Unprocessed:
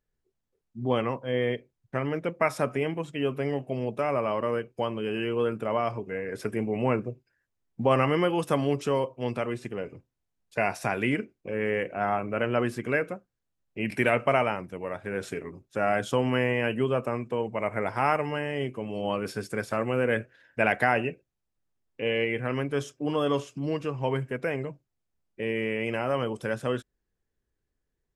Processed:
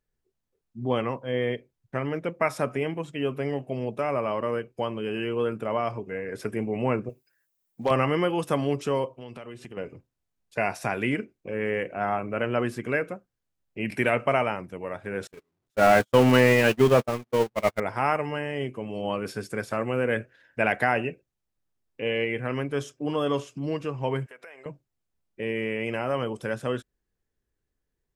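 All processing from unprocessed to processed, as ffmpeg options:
ffmpeg -i in.wav -filter_complex "[0:a]asettb=1/sr,asplit=3[link_01][link_02][link_03];[link_01]atrim=end=7.094[link_04];[link_02]atrim=start=7.09:end=7.91,asetpts=PTS-STARTPTS,afade=type=in:duration=0.004:curve=qsin,afade=type=out:start_time=0.816:duration=0.004:curve=qsin,aemphasis=mode=production:type=bsi,aeval=exprs='0.168*(abs(mod(val(0)/0.168+3,4)-2)-1)':channel_layout=same[link_05];[link_03]atrim=start=7.906[link_06];[link_04][link_05]acrossfade=duration=0.004:curve1=hsin:curve2=qsin[link_07];[link_07][link_06]acrossfade=duration=0.004:curve1=qsin:curve2=hsin,asettb=1/sr,asplit=3[link_08][link_09][link_10];[link_08]atrim=end=9.134[link_11];[link_09]atrim=start=9.13:end=9.77,asetpts=PTS-STARTPTS,afade=type=in:duration=0.004:curve=qsin,afade=type=out:start_time=0.636:duration=0.004:curve=qsin,equalizer=frequency=3000:width_type=o:width=0.22:gain=7,acompressor=threshold=-38dB:ratio=4:attack=3.2:release=140:knee=1:detection=peak[link_12];[link_10]atrim=start=9.766[link_13];[link_11][link_12]acrossfade=duration=0.004:curve1=hsin:curve2=qsin[link_14];[link_14][link_13]acrossfade=duration=0.004:curve1=qsin:curve2=hsin,asettb=1/sr,asplit=3[link_15][link_16][link_17];[link_15]atrim=end=15.274[link_18];[link_16]atrim=start=15.27:end=17.8,asetpts=PTS-STARTPTS,afade=type=in:duration=0.004:curve=qsin,afade=type=out:start_time=2.526:duration=0.004:curve=qsin,aeval=exprs='val(0)+0.5*0.0316*sgn(val(0))':channel_layout=same,agate=range=-52dB:threshold=-26dB:ratio=16:release=100:detection=peak,acontrast=62[link_19];[link_17]atrim=start=17.796[link_20];[link_18][link_19]acrossfade=duration=0.004:curve1=hsin:curve2=qsin[link_21];[link_21][link_20]acrossfade=duration=0.004:curve1=qsin:curve2=hsin,asettb=1/sr,asplit=3[link_22][link_23][link_24];[link_22]atrim=end=24.264[link_25];[link_23]atrim=start=24.26:end=24.66,asetpts=PTS-STARTPTS,afade=type=in:duration=0.004:curve=qsin,afade=type=out:start_time=0.396:duration=0.004:curve=qsin,highpass=730,acompressor=threshold=-44dB:ratio=4:attack=3.2:release=140:knee=1:detection=peak[link_26];[link_24]atrim=start=24.656[link_27];[link_25][link_26]acrossfade=duration=0.004:curve1=hsin:curve2=qsin[link_28];[link_28][link_27]acrossfade=duration=0.004:curve1=qsin:curve2=hsin" out.wav

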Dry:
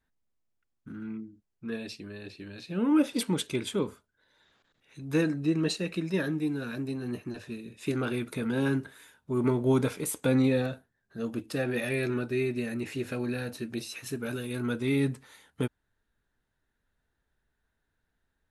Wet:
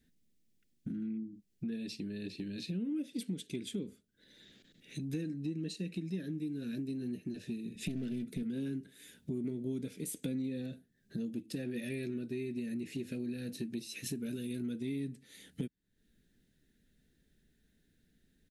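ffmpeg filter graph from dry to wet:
ffmpeg -i in.wav -filter_complex "[0:a]asettb=1/sr,asplit=3[link_01][link_02][link_03];[link_01]atrim=end=7.754[link_04];[link_02]atrim=start=7.75:end=8.43,asetpts=PTS-STARTPTS,afade=type=in:duration=0.004:curve=qsin,afade=type=out:start_time=0.676:duration=0.004:curve=qsin,bass=frequency=250:gain=8,treble=frequency=4000:gain=-2,aeval=exprs='clip(val(0),-1,0.0188)':channel_layout=same,aecho=1:1:4.6:0.31,atrim=end_sample=29988[link_05];[link_03]atrim=start=8.426[link_06];[link_04][link_05]acrossfade=duration=0.004:curve1=hsin:curve2=qsin[link_07];[link_07][link_06]acrossfade=duration=0.004:curve1=qsin:curve2=hsin,firequalizer=gain_entry='entry(110,0);entry(180,11);entry(1000,-21);entry(1800,-2);entry(3500,3)':delay=0.05:min_phase=1,acompressor=threshold=-44dB:ratio=5,volume=5.5dB" out.wav

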